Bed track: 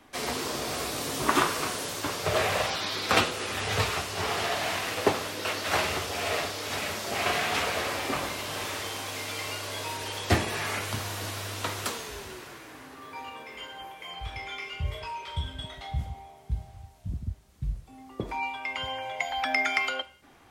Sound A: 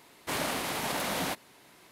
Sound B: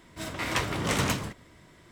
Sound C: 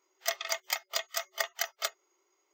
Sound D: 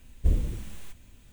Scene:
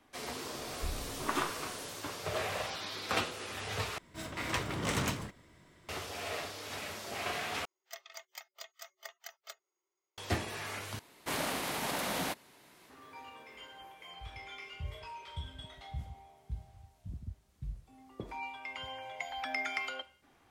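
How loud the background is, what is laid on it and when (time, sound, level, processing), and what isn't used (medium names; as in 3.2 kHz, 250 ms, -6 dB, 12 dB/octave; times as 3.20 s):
bed track -9.5 dB
0.58 s: add D -15.5 dB
3.98 s: replace with B -6 dB
7.65 s: replace with C -16 dB
10.99 s: replace with A -3 dB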